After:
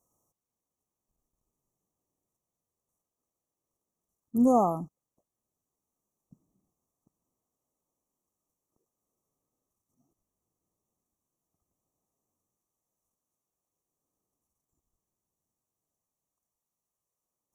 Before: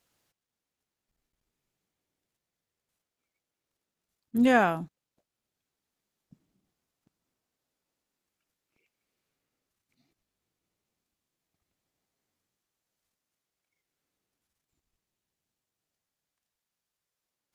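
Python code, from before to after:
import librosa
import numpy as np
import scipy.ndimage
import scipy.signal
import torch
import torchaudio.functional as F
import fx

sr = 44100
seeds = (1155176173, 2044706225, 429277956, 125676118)

y = fx.brickwall_bandstop(x, sr, low_hz=1300.0, high_hz=5500.0)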